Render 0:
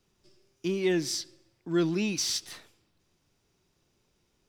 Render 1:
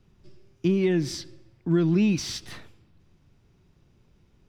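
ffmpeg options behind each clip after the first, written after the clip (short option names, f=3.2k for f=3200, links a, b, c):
-af "acompressor=threshold=-28dB:ratio=5,bass=f=250:g=11,treble=f=4k:g=-10,volume=5dB"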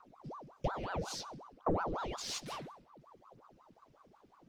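-af "acompressor=threshold=-29dB:ratio=6,aphaser=in_gain=1:out_gain=1:delay=3.9:decay=0.53:speed=0.59:type=triangular,aeval=exprs='val(0)*sin(2*PI*660*n/s+660*0.8/5.5*sin(2*PI*5.5*n/s))':c=same,volume=-3.5dB"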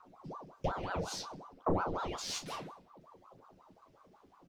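-af "aecho=1:1:11|37:0.473|0.335"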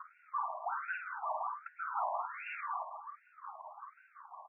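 -af "aecho=1:1:50|105|165.5|232|305.3:0.631|0.398|0.251|0.158|0.1,acompressor=threshold=-40dB:ratio=12,afftfilt=real='re*between(b*sr/1024,810*pow(2000/810,0.5+0.5*sin(2*PI*1.3*pts/sr))/1.41,810*pow(2000/810,0.5+0.5*sin(2*PI*1.3*pts/sr))*1.41)':imag='im*between(b*sr/1024,810*pow(2000/810,0.5+0.5*sin(2*PI*1.3*pts/sr))/1.41,810*pow(2000/810,0.5+0.5*sin(2*PI*1.3*pts/sr))*1.41)':win_size=1024:overlap=0.75,volume=13.5dB"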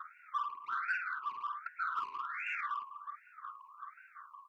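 -filter_complex "[0:a]asplit=2[a][b];[b]asoftclip=type=tanh:threshold=-36dB,volume=-6dB[c];[a][c]amix=inputs=2:normalize=0,asuperstop=centerf=700:order=8:qfactor=1,volume=2dB"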